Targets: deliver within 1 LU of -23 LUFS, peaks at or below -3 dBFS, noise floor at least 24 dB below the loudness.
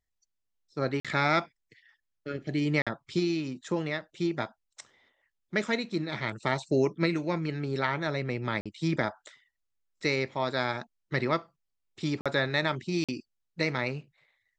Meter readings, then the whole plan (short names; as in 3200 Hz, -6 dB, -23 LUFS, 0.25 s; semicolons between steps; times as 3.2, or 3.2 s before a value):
dropouts 5; longest dropout 46 ms; loudness -30.5 LUFS; peak -11.0 dBFS; loudness target -23.0 LUFS
-> interpolate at 1/2.82/8.61/12.21/13.04, 46 ms; gain +7.5 dB